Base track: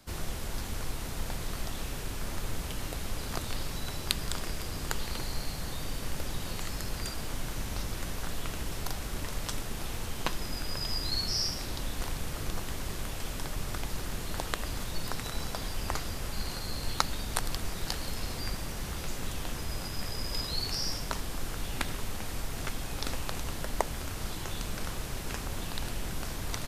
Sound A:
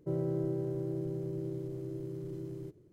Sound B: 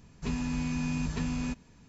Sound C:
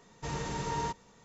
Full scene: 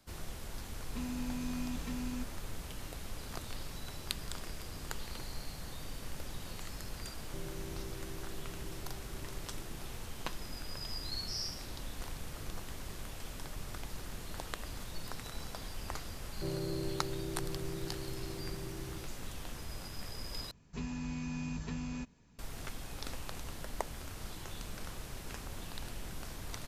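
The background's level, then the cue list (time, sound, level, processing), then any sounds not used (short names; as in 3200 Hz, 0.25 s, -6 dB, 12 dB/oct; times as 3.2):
base track -8 dB
0.7 add B -10 dB + comb 3.8 ms
7.27 add A -14 dB
16.35 add A -5 dB
20.51 replace with B -7.5 dB
not used: C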